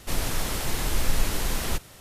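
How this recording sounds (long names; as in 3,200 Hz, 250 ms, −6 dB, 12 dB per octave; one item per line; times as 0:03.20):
background noise floor −49 dBFS
spectral slope −3.0 dB per octave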